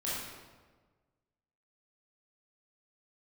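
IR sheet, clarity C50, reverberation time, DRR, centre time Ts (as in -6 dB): -2.0 dB, 1.4 s, -9.0 dB, 93 ms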